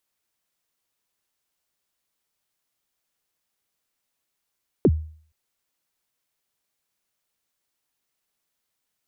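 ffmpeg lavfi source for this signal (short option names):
-f lavfi -i "aevalsrc='0.316*pow(10,-3*t/0.49)*sin(2*PI*(480*0.051/log(78/480)*(exp(log(78/480)*min(t,0.051)/0.051)-1)+78*max(t-0.051,0)))':d=0.47:s=44100"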